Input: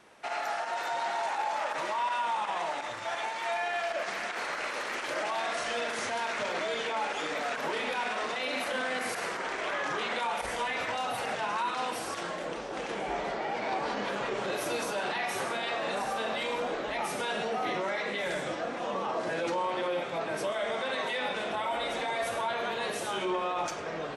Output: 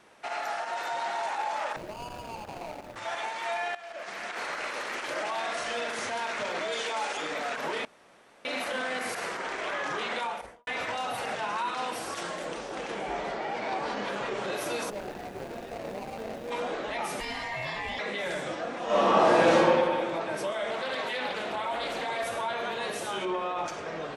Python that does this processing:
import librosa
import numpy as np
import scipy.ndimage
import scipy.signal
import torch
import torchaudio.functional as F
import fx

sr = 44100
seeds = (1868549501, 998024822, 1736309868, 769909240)

y = fx.median_filter(x, sr, points=41, at=(1.76, 2.96))
y = fx.bass_treble(y, sr, bass_db=-7, treble_db=8, at=(6.72, 7.17))
y = fx.studio_fade_out(y, sr, start_s=10.18, length_s=0.49)
y = fx.high_shelf(y, sr, hz=6300.0, db=8.5, at=(12.15, 12.75))
y = fx.median_filter(y, sr, points=41, at=(14.89, 16.5), fade=0.02)
y = fx.ring_mod(y, sr, carrier_hz=1400.0, at=(17.2, 17.99))
y = fx.reverb_throw(y, sr, start_s=18.85, length_s=0.73, rt60_s=2.0, drr_db=-11.5)
y = fx.doppler_dist(y, sr, depth_ms=0.25, at=(20.7, 22.24))
y = fx.high_shelf(y, sr, hz=4800.0, db=-6.0, at=(23.25, 23.74))
y = fx.edit(y, sr, fx.fade_in_from(start_s=3.75, length_s=0.67, floor_db=-16.5),
    fx.room_tone_fill(start_s=7.85, length_s=0.6), tone=tone)